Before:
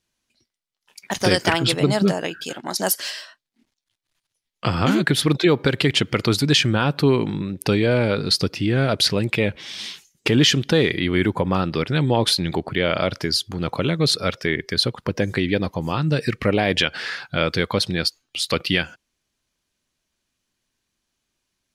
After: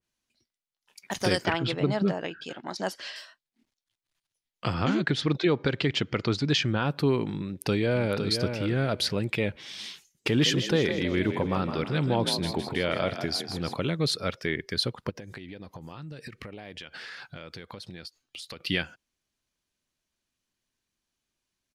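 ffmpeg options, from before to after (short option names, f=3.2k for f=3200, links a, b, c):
-filter_complex "[0:a]asettb=1/sr,asplit=3[a][b][c];[a]atrim=end=1.454[d];[b]atrim=start=1.45:end=3.16,asetpts=PTS-STARTPTS,afade=t=in:d=0.004:c=qsin,afade=t=out:st=1.706:d=0.004:c=qsin,lowpass=4k[e];[c]atrim=start=3.156[f];[d][e]acrossfade=d=0.004:c1=hsin:c2=qsin[g];[g][f]acrossfade=d=0.004:c1=qsin:c2=hsin,asplit=3[h][i][j];[h]afade=t=out:st=4.73:d=0.02[k];[i]lowpass=f=6.6k:w=0.5412,lowpass=f=6.6k:w=1.3066,afade=t=in:st=4.73:d=0.02,afade=t=out:st=6.83:d=0.02[l];[j]afade=t=in:st=6.83:d=0.02[m];[k][l][m]amix=inputs=3:normalize=0,asplit=2[n][o];[o]afade=t=in:st=7.44:d=0.01,afade=t=out:st=8.23:d=0.01,aecho=0:1:510|1020|1530:0.473151|0.0709727|0.0106459[p];[n][p]amix=inputs=2:normalize=0,asplit=3[q][r][s];[q]afade=t=out:st=10.28:d=0.02[t];[r]asplit=7[u][v][w][x][y][z][aa];[v]adelay=160,afreqshift=45,volume=-8.5dB[ab];[w]adelay=320,afreqshift=90,volume=-14.7dB[ac];[x]adelay=480,afreqshift=135,volume=-20.9dB[ad];[y]adelay=640,afreqshift=180,volume=-27.1dB[ae];[z]adelay=800,afreqshift=225,volume=-33.3dB[af];[aa]adelay=960,afreqshift=270,volume=-39.5dB[ag];[u][ab][ac][ad][ae][af][ag]amix=inputs=7:normalize=0,afade=t=in:st=10.28:d=0.02,afade=t=out:st=13.73:d=0.02[ah];[s]afade=t=in:st=13.73:d=0.02[ai];[t][ah][ai]amix=inputs=3:normalize=0,asplit=3[aj][ak][al];[aj]afade=t=out:st=15.09:d=0.02[am];[ak]acompressor=threshold=-30dB:ratio=16:attack=3.2:release=140:knee=1:detection=peak,afade=t=in:st=15.09:d=0.02,afade=t=out:st=18.64:d=0.02[an];[al]afade=t=in:st=18.64:d=0.02[ao];[am][an][ao]amix=inputs=3:normalize=0,adynamicequalizer=threshold=0.0316:dfrequency=2300:dqfactor=0.7:tfrequency=2300:tqfactor=0.7:attack=5:release=100:ratio=0.375:range=2:mode=cutabove:tftype=highshelf,volume=-7dB"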